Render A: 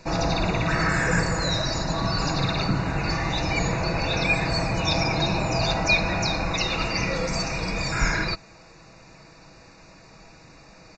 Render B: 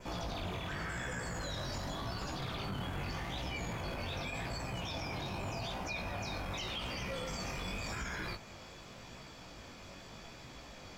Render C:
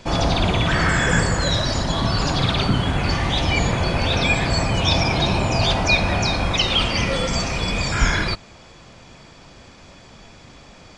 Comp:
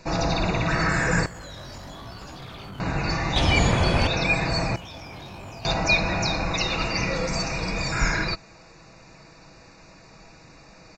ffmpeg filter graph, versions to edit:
-filter_complex "[1:a]asplit=2[s0][s1];[0:a]asplit=4[s2][s3][s4][s5];[s2]atrim=end=1.262[s6];[s0]atrim=start=1.258:end=2.802[s7];[s3]atrim=start=2.798:end=3.362[s8];[2:a]atrim=start=3.358:end=4.072[s9];[s4]atrim=start=4.068:end=4.762[s10];[s1]atrim=start=4.758:end=5.652[s11];[s5]atrim=start=5.648[s12];[s6][s7]acrossfade=d=0.004:c1=hsin:c2=hsin[s13];[s13][s8]acrossfade=d=0.004:c1=hsin:c2=hsin[s14];[s14][s9]acrossfade=d=0.004:c1=hsin:c2=hsin[s15];[s15][s10]acrossfade=d=0.004:c1=hsin:c2=hsin[s16];[s16][s11]acrossfade=d=0.004:c1=hsin:c2=hsin[s17];[s17][s12]acrossfade=d=0.004:c1=hsin:c2=hsin"

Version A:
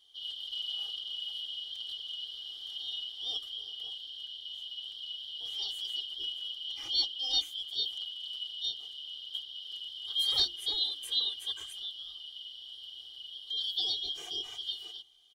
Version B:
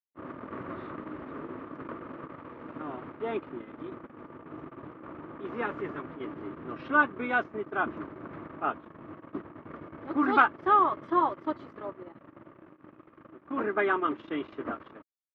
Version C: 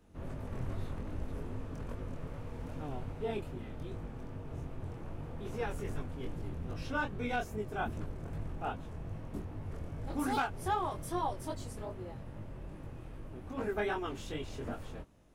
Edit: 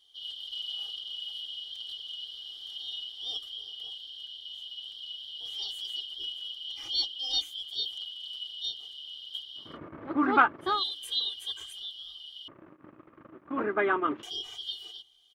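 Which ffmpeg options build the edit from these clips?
-filter_complex "[1:a]asplit=2[s0][s1];[0:a]asplit=3[s2][s3][s4];[s2]atrim=end=9.79[s5];[s0]atrim=start=9.55:end=10.84[s6];[s3]atrim=start=10.6:end=12.482[s7];[s1]atrim=start=12.478:end=14.232[s8];[s4]atrim=start=14.228[s9];[s5][s6]acrossfade=d=0.24:c1=tri:c2=tri[s10];[s10][s7]acrossfade=d=0.24:c1=tri:c2=tri[s11];[s11][s8]acrossfade=d=0.004:c1=hsin:c2=hsin[s12];[s12][s9]acrossfade=d=0.004:c1=hsin:c2=hsin"

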